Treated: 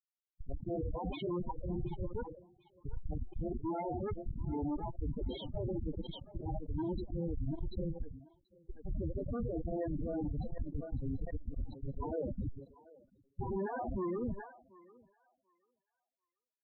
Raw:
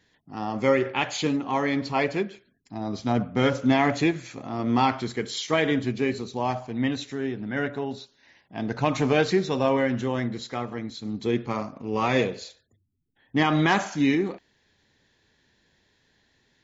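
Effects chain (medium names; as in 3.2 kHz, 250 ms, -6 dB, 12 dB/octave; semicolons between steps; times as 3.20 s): high-pass 450 Hz 6 dB/octave; dynamic bell 650 Hz, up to +4 dB, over -40 dBFS, Q 2.1; slow attack 495 ms; in parallel at +3 dB: compression 8:1, threshold -36 dBFS, peak gain reduction 17.5 dB; on the sum: Schmitt trigger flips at -29 dBFS; formant-preserving pitch shift +4 st; loudest bins only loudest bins 8; on a send: thinning echo 736 ms, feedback 26%, high-pass 950 Hz, level -15 dB; on the sum: resampled via 8 kHz; decay stretcher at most 100 dB/s; trim -2.5 dB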